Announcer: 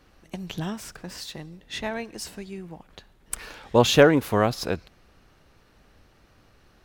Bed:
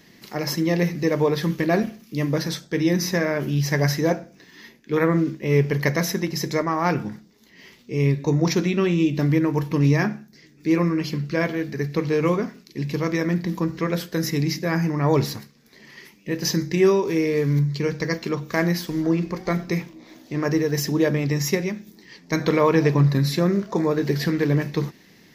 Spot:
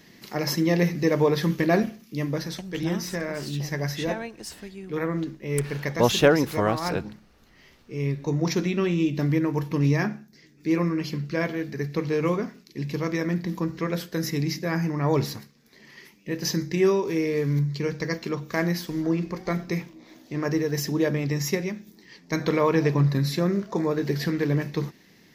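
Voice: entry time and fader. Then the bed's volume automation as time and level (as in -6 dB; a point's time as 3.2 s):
2.25 s, -2.5 dB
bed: 1.76 s -0.5 dB
2.71 s -8 dB
7.91 s -8 dB
8.58 s -3.5 dB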